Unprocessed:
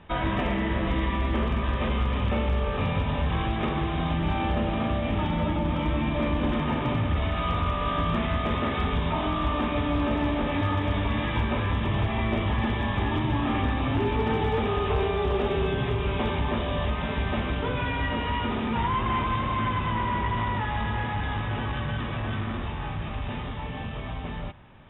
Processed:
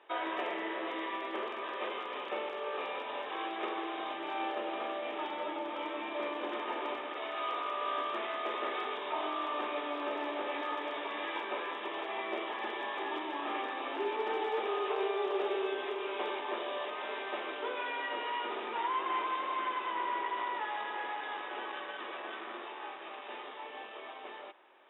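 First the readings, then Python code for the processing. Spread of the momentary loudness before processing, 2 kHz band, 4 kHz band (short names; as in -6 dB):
5 LU, -6.0 dB, n/a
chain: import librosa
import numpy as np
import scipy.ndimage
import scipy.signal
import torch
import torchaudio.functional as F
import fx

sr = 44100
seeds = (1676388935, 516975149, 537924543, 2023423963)

y = scipy.signal.sosfilt(scipy.signal.ellip(4, 1.0, 80, 350.0, 'highpass', fs=sr, output='sos'), x)
y = F.gain(torch.from_numpy(y), -5.5).numpy()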